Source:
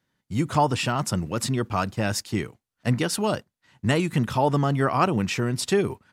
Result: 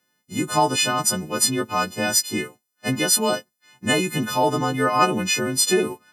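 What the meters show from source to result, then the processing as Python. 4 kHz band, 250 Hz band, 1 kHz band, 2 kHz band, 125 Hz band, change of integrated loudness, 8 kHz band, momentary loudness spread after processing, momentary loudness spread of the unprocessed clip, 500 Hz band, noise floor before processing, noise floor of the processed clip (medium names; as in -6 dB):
+8.5 dB, +0.5 dB, +3.5 dB, +5.5 dB, -5.5 dB, +4.0 dB, +12.0 dB, 10 LU, 8 LU, +2.0 dB, -84 dBFS, -75 dBFS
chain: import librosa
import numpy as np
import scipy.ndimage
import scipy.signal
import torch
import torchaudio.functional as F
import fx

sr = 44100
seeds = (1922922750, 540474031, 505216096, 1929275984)

y = fx.freq_snap(x, sr, grid_st=3)
y = scipy.signal.sosfilt(scipy.signal.butter(2, 240.0, 'highpass', fs=sr, output='sos'), y)
y = fx.low_shelf(y, sr, hz=410.0, db=6.5)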